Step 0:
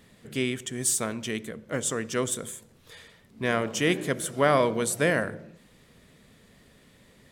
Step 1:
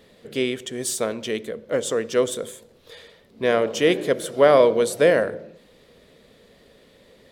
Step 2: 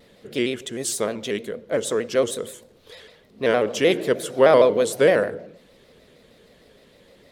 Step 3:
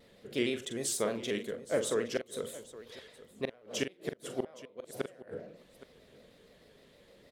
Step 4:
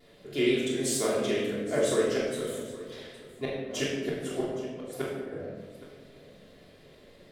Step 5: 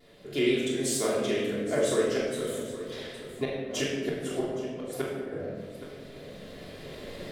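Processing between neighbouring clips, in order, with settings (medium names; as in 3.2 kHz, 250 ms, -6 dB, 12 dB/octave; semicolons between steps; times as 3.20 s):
graphic EQ 125/500/4000/8000 Hz -4/+11/+6/-4 dB
vibrato with a chosen wave square 6.5 Hz, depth 100 cents
inverted gate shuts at -11 dBFS, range -33 dB; on a send: multi-tap echo 43/818 ms -9/-17.5 dB; on the sum: trim -7.5 dB
simulated room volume 860 m³, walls mixed, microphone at 3.2 m; trim -1.5 dB
recorder AGC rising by 6.4 dB/s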